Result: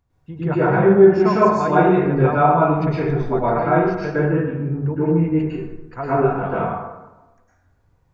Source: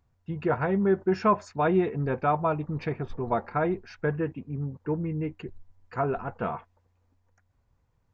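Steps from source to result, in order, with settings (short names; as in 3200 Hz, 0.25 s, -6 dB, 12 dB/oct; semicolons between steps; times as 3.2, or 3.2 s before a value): plate-style reverb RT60 1.1 s, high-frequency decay 0.5×, pre-delay 95 ms, DRR -9.5 dB; gain -1 dB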